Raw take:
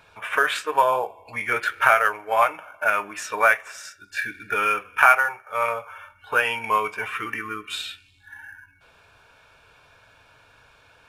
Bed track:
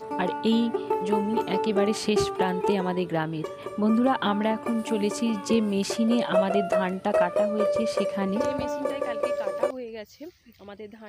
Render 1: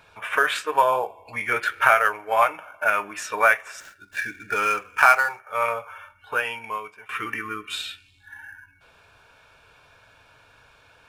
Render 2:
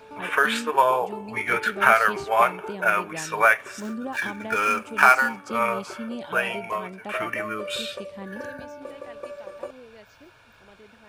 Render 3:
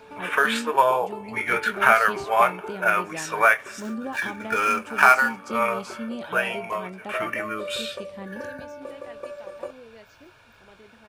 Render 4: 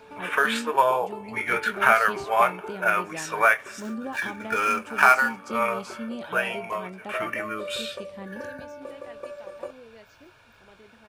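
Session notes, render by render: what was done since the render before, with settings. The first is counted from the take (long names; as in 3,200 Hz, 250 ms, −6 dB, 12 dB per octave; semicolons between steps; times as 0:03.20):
0:03.80–0:05.40: running median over 9 samples; 0:05.93–0:07.09: fade out, to −22 dB
mix in bed track −10.5 dB
double-tracking delay 22 ms −13 dB; echo ahead of the sound 125 ms −24 dB
level −1.5 dB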